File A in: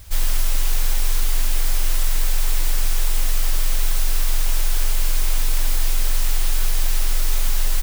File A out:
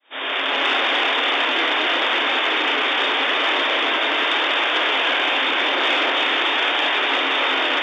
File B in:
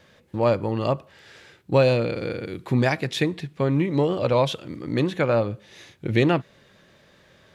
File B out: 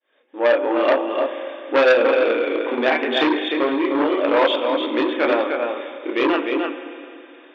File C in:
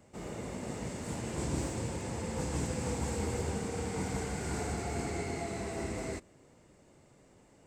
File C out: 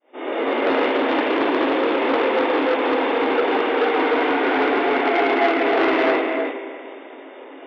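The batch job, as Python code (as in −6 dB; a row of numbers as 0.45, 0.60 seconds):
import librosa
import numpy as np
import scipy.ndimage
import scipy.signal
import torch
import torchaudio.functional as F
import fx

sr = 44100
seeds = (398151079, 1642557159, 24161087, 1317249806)

y = fx.fade_in_head(x, sr, length_s=0.72)
y = fx.hum_notches(y, sr, base_hz=50, count=10)
y = fx.rider(y, sr, range_db=5, speed_s=0.5)
y = fx.chorus_voices(y, sr, voices=2, hz=0.42, base_ms=29, depth_ms=3.6, mix_pct=45)
y = fx.brickwall_bandpass(y, sr, low_hz=250.0, high_hz=3700.0)
y = y + 10.0 ** (-5.5 / 20.0) * np.pad(y, (int(302 * sr / 1000.0), 0))[:len(y)]
y = fx.rev_schroeder(y, sr, rt60_s=2.7, comb_ms=33, drr_db=9.5)
y = fx.transformer_sat(y, sr, knee_hz=1300.0)
y = y * 10.0 ** (-20 / 20.0) / np.sqrt(np.mean(np.square(y)))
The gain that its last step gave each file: +19.0, +10.0, +25.0 decibels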